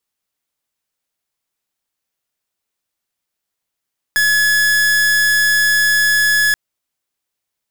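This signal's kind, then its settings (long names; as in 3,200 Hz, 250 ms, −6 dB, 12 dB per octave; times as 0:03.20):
pulse wave 1,700 Hz, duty 45% −13.5 dBFS 2.38 s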